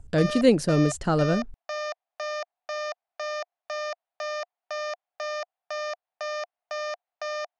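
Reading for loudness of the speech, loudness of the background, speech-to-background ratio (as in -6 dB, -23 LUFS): -23.0 LUFS, -34.0 LUFS, 11.0 dB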